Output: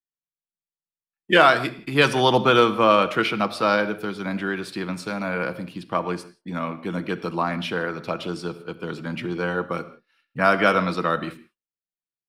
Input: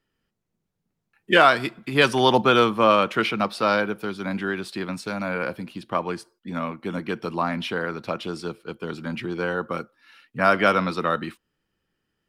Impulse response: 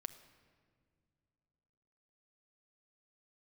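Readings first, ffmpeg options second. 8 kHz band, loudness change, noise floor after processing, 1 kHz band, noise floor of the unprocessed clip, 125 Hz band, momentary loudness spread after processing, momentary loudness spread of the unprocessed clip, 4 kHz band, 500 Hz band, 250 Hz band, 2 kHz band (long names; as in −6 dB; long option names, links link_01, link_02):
+0.5 dB, +0.5 dB, below −85 dBFS, +0.5 dB, −79 dBFS, +1.5 dB, 15 LU, 15 LU, +0.5 dB, +1.0 dB, +0.5 dB, +1.0 dB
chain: -filter_complex "[0:a]agate=range=-33dB:threshold=-41dB:ratio=3:detection=peak[link_01];[1:a]atrim=start_sample=2205,afade=type=out:start_time=0.23:duration=0.01,atrim=end_sample=10584[link_02];[link_01][link_02]afir=irnorm=-1:irlink=0,volume=4dB"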